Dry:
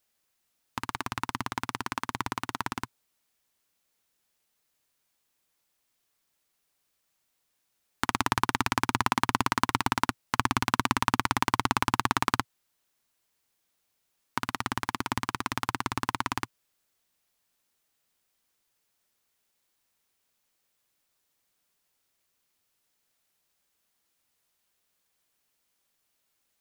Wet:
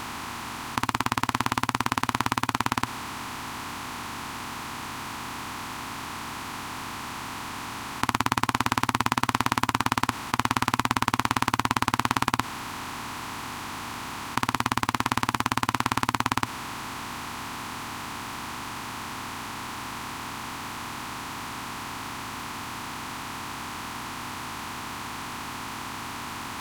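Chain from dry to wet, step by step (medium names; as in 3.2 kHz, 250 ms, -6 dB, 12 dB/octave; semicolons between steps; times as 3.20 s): spectral levelling over time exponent 0.2; trim -3 dB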